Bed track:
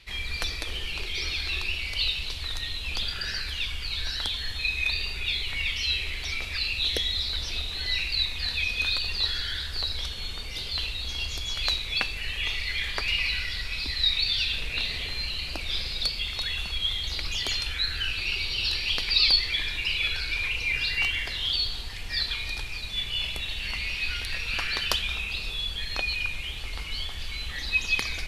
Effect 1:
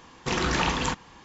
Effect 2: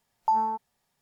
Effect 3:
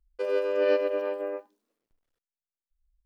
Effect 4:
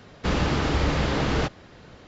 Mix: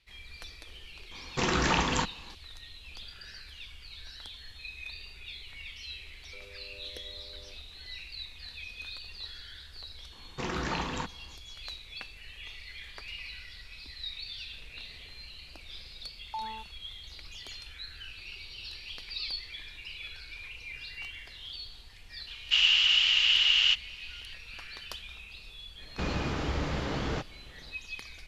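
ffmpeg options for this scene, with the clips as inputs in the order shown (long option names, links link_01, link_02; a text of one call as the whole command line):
ffmpeg -i bed.wav -i cue0.wav -i cue1.wav -i cue2.wav -i cue3.wav -filter_complex "[1:a]asplit=2[link_01][link_02];[4:a]asplit=2[link_03][link_04];[0:a]volume=-15.5dB[link_05];[3:a]acompressor=threshold=-35dB:ratio=6:attack=3.2:release=140:knee=1:detection=peak[link_06];[link_02]highshelf=frequency=3600:gain=-6.5[link_07];[link_03]highpass=frequency=2900:width_type=q:width=13[link_08];[link_01]atrim=end=1.24,asetpts=PTS-STARTPTS,volume=-1.5dB,afade=type=in:duration=0.004:curve=hsin,afade=type=out:start_time=1.236:duration=0.004:curve=hsin,adelay=1110[link_09];[link_06]atrim=end=3.05,asetpts=PTS-STARTPTS,volume=-17dB,afade=type=in:duration=0.004:curve=hsin,afade=type=out:start_time=3.046:duration=0.004:curve=hsin,adelay=6140[link_10];[link_07]atrim=end=1.24,asetpts=PTS-STARTPTS,volume=-7dB,afade=type=in:duration=0.004:curve=hsin,afade=type=out:start_time=1.236:duration=0.004:curve=hsin,adelay=10120[link_11];[2:a]atrim=end=1.01,asetpts=PTS-STARTPTS,volume=-13.5dB,afade=type=in:duration=0.004:curve=hsin,afade=type=out:start_time=1.006:duration=0.004:curve=hsin,adelay=16060[link_12];[link_08]atrim=end=2.07,asetpts=PTS-STARTPTS,volume=-1.5dB,afade=type=in:duration=0.004:curve=hsin,afade=type=out:start_time=2.066:duration=0.004:curve=hsin,adelay=22270[link_13];[link_04]atrim=end=2.07,asetpts=PTS-STARTPTS,volume=-8.5dB,afade=type=in:duration=0.1,afade=type=out:start_time=1.97:duration=0.1,adelay=25740[link_14];[link_05][link_09][link_10][link_11][link_12][link_13][link_14]amix=inputs=7:normalize=0" out.wav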